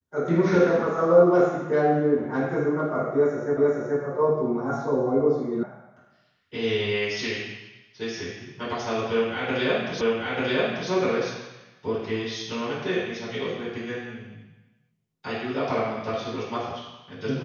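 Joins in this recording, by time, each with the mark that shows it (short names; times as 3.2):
3.57 repeat of the last 0.43 s
5.63 sound cut off
10.01 repeat of the last 0.89 s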